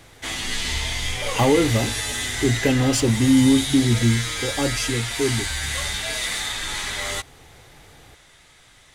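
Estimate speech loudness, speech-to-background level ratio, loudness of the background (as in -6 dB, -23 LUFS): -21.0 LUFS, 4.5 dB, -25.5 LUFS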